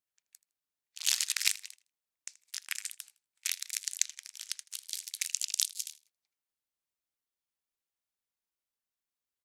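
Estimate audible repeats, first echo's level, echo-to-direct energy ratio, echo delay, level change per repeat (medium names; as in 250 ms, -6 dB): 2, -19.0 dB, -19.0 dB, 80 ms, -12.5 dB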